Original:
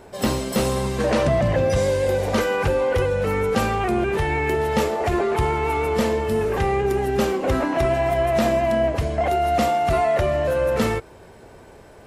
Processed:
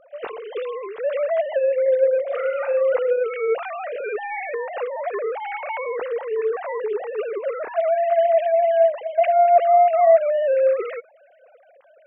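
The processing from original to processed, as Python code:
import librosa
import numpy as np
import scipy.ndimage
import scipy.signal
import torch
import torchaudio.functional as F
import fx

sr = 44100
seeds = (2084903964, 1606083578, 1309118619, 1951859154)

y = fx.sine_speech(x, sr)
y = fx.room_flutter(y, sr, wall_m=7.1, rt60_s=0.4, at=(2.26, 2.8), fade=0.02)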